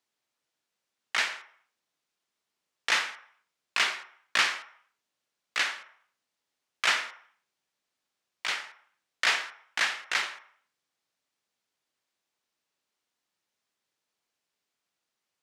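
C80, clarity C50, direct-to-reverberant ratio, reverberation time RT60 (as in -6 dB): 15.5 dB, 13.0 dB, 11.0 dB, 0.60 s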